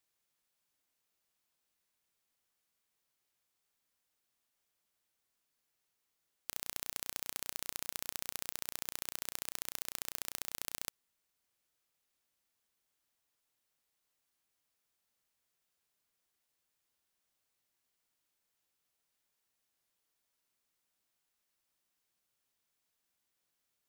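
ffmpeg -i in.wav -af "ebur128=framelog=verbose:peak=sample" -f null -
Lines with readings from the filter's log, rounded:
Integrated loudness:
  I:         -40.3 LUFS
  Threshold: -50.3 LUFS
Loudness range:
  LRA:         9.5 LU
  Threshold: -62.2 LUFS
  LRA low:   -49.5 LUFS
  LRA high:  -40.0 LUFS
Sample peak:
  Peak:       -9.4 dBFS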